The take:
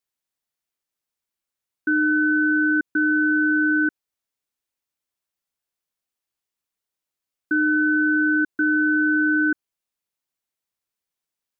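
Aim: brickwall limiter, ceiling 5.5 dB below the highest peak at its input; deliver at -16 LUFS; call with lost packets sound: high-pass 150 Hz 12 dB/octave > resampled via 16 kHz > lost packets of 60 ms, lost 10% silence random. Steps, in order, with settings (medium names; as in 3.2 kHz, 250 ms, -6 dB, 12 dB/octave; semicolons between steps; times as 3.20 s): peak limiter -18.5 dBFS; high-pass 150 Hz 12 dB/octave; resampled via 16 kHz; lost packets of 60 ms, lost 10% silence random; trim +9.5 dB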